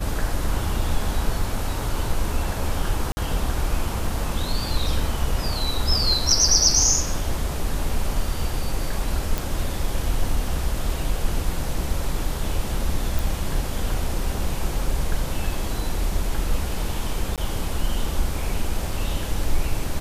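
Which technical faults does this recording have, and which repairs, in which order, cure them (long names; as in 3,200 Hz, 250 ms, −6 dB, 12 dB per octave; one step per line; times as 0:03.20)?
0:03.12–0:03.17: drop-out 50 ms
0:09.38: click
0:13.19: click
0:17.36–0:17.38: drop-out 17 ms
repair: click removal
repair the gap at 0:03.12, 50 ms
repair the gap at 0:17.36, 17 ms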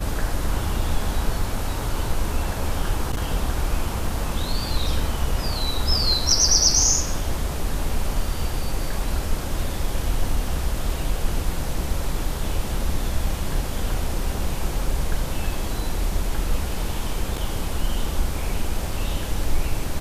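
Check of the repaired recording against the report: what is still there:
none of them is left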